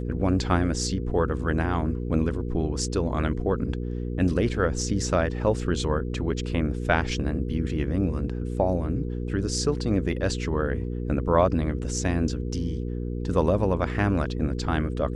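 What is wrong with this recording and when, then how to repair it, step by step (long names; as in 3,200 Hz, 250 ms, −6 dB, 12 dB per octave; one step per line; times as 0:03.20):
mains hum 60 Hz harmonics 8 −30 dBFS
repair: hum removal 60 Hz, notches 8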